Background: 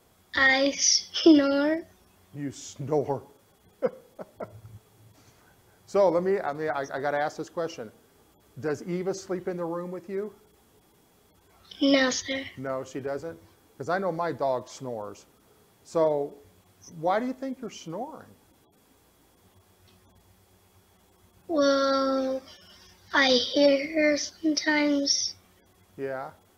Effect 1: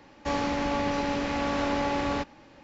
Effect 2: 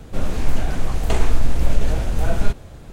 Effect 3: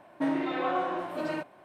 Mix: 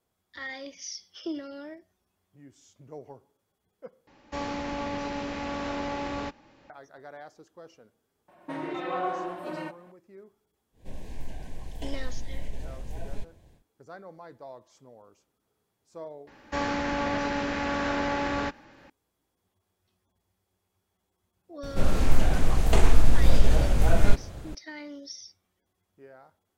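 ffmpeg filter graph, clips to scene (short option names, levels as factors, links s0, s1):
-filter_complex "[1:a]asplit=2[s0][s1];[2:a]asplit=2[s2][s3];[0:a]volume=0.133[s4];[3:a]aecho=1:1:5.5:0.55[s5];[s2]asuperstop=centerf=1300:order=8:qfactor=3[s6];[s1]equalizer=f=1600:w=2.8:g=6.5[s7];[s4]asplit=2[s8][s9];[s8]atrim=end=4.074[s10];[s0]atrim=end=2.63,asetpts=PTS-STARTPTS,volume=0.562[s11];[s9]atrim=start=6.696[s12];[s5]atrim=end=1.64,asetpts=PTS-STARTPTS,volume=0.631,afade=t=in:d=0.004:c=hsin,afade=t=out:st=1.636:d=0.004:c=hsin,adelay=8280[s13];[s6]atrim=end=2.92,asetpts=PTS-STARTPTS,volume=0.133,afade=t=in:d=0.1,afade=t=out:st=2.82:d=0.1,adelay=10720[s14];[s7]atrim=end=2.63,asetpts=PTS-STARTPTS,volume=0.841,afade=t=in:d=0.004:c=hsin,afade=t=out:st=2.626:d=0.004:c=hsin,adelay=16270[s15];[s3]atrim=end=2.92,asetpts=PTS-STARTPTS,volume=0.891,afade=t=in:d=0.004:c=hsin,afade=t=out:st=2.916:d=0.004:c=hsin,adelay=21630[s16];[s10][s11]acrossfade=d=0.004:c1=hsin:c2=hsin[s17];[s17][s12]acrossfade=d=0.004:c1=hsin:c2=hsin[s18];[s18][s13][s14][s15][s16]amix=inputs=5:normalize=0"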